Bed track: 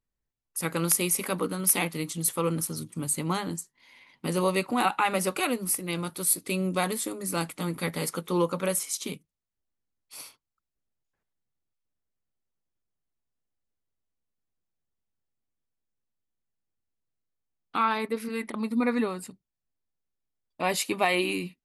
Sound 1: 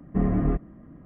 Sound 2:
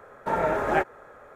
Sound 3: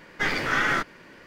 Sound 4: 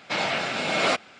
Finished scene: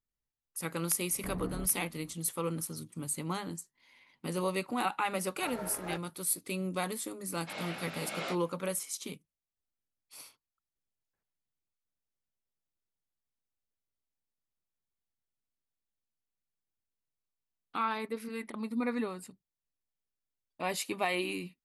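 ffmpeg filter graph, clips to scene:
ffmpeg -i bed.wav -i cue0.wav -i cue1.wav -i cue2.wav -i cue3.wav -filter_complex "[0:a]volume=-7dB[link_01];[1:a]asoftclip=type=tanh:threshold=-24dB[link_02];[2:a]aeval=exprs='sgn(val(0))*max(abs(val(0))-0.0168,0)':channel_layout=same[link_03];[4:a]flanger=delay=17:depth=4.6:speed=2.4[link_04];[link_02]atrim=end=1.05,asetpts=PTS-STARTPTS,volume=-11.5dB,afade=type=in:duration=0.004:curve=hsin,afade=type=out:start_time=1.046:duration=0.004:curve=hsin,adelay=1090[link_05];[link_03]atrim=end=1.35,asetpts=PTS-STARTPTS,volume=-15.5dB,afade=type=in:duration=0.004:curve=hsin,afade=type=out:start_time=1.346:duration=0.004:curve=hsin,adelay=5150[link_06];[link_04]atrim=end=1.19,asetpts=PTS-STARTPTS,volume=-13dB,afade=type=in:duration=0.004:curve=hsin,afade=type=out:start_time=1.186:duration=0.004:curve=hsin,adelay=7370[link_07];[link_01][link_05][link_06][link_07]amix=inputs=4:normalize=0" out.wav

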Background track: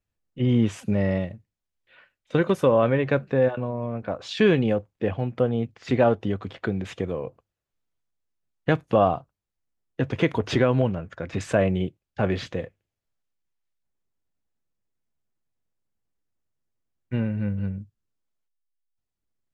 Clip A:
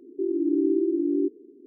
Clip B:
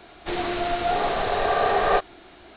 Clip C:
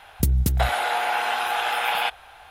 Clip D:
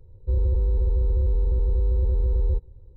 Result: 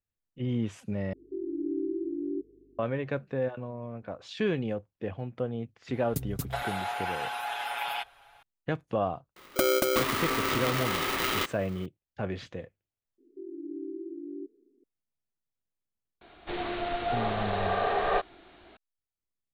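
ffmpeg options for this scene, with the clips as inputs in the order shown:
ffmpeg -i bed.wav -i cue0.wav -i cue1.wav -i cue2.wav -filter_complex "[1:a]asplit=2[link_01][link_02];[3:a]asplit=2[link_03][link_04];[0:a]volume=-9.5dB[link_05];[link_01]aeval=exprs='val(0)+0.00141*(sin(2*PI*50*n/s)+sin(2*PI*2*50*n/s)/2+sin(2*PI*3*50*n/s)/3+sin(2*PI*4*50*n/s)/4+sin(2*PI*5*50*n/s)/5)':channel_layout=same[link_06];[link_03]aecho=1:1:7.2:0.84[link_07];[link_04]aeval=exprs='val(0)*sgn(sin(2*PI*450*n/s))':channel_layout=same[link_08];[link_05]asplit=2[link_09][link_10];[link_09]atrim=end=1.134[link_11];[link_06]atrim=end=1.66,asetpts=PTS-STARTPTS,volume=-9dB[link_12];[link_10]atrim=start=2.786[link_13];[link_07]atrim=end=2.5,asetpts=PTS-STARTPTS,volume=-12.5dB,afade=type=in:duration=0.004:curve=hsin,afade=type=out:start_time=2.496:duration=0.004:curve=hsin,adelay=261513S[link_14];[link_08]atrim=end=2.5,asetpts=PTS-STARTPTS,volume=-5.5dB,afade=type=in:duration=0.004:curve=hsin,afade=type=out:start_time=2.496:duration=0.004:curve=hsin,adelay=9360[link_15];[link_02]atrim=end=1.66,asetpts=PTS-STARTPTS,volume=-15.5dB,afade=type=in:duration=0.004:curve=hsin,afade=type=out:start_time=1.656:duration=0.004:curve=hsin,adelay=13180[link_16];[2:a]atrim=end=2.56,asetpts=PTS-STARTPTS,volume=-6.5dB,afade=type=in:duration=0.004:curve=hsin,afade=type=out:start_time=2.556:duration=0.004:curve=hsin,adelay=16210[link_17];[link_11][link_12]acrossfade=duration=0.004:curve1=hsin:curve2=hsin[link_18];[link_18][link_13]acrossfade=duration=0.004:curve1=hsin:curve2=hsin[link_19];[link_19][link_14][link_15][link_16][link_17]amix=inputs=5:normalize=0" out.wav

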